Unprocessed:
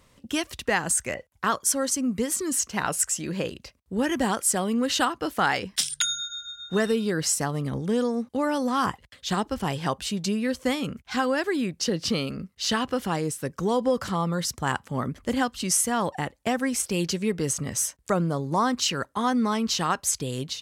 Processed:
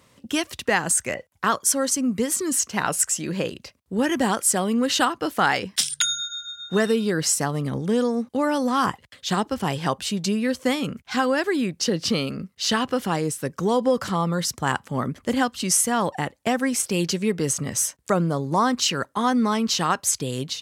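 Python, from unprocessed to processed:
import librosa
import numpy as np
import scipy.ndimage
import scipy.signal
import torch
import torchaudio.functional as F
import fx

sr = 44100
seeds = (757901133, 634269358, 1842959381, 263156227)

y = scipy.signal.sosfilt(scipy.signal.butter(2, 94.0, 'highpass', fs=sr, output='sos'), x)
y = y * 10.0 ** (3.0 / 20.0)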